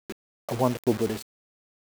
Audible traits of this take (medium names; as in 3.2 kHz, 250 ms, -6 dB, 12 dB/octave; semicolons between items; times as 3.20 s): tremolo saw down 2.3 Hz, depth 55%; a quantiser's noise floor 6-bit, dither none